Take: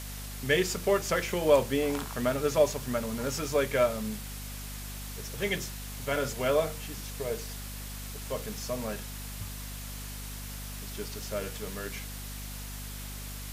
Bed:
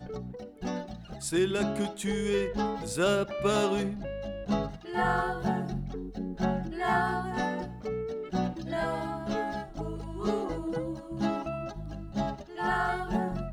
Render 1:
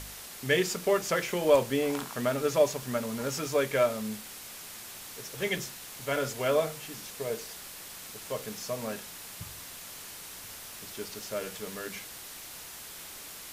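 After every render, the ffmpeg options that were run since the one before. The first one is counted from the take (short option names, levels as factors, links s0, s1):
-af "bandreject=f=50:t=h:w=4,bandreject=f=100:t=h:w=4,bandreject=f=150:t=h:w=4,bandreject=f=200:t=h:w=4,bandreject=f=250:t=h:w=4"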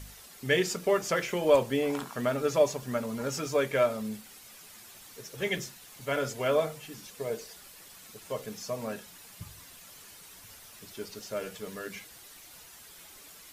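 -af "afftdn=nr=9:nf=-45"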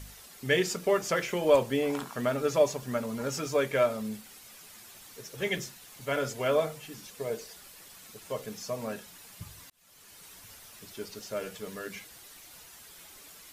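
-filter_complex "[0:a]asplit=2[s0][s1];[s0]atrim=end=9.7,asetpts=PTS-STARTPTS,afade=t=out:st=9.696:d=0.004:c=hsin[s2];[s1]atrim=start=9.7,asetpts=PTS-STARTPTS,afade=t=in:d=0.55[s3];[s2][s3]concat=n=2:v=0:a=1"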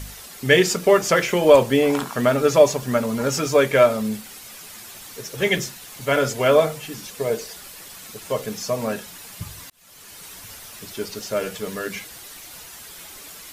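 -af "volume=3.35,alimiter=limit=0.794:level=0:latency=1"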